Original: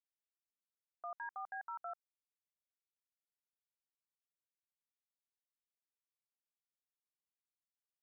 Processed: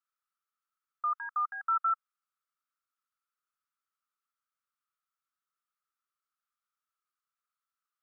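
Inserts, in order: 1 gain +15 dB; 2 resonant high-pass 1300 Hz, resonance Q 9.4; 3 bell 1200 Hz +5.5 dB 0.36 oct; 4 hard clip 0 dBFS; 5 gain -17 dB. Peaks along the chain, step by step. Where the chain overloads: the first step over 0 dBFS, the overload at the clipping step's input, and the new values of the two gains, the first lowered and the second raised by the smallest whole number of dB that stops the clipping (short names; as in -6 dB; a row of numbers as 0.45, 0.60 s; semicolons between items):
-22.0, -8.5, -5.5, -5.5, -22.5 dBFS; no overload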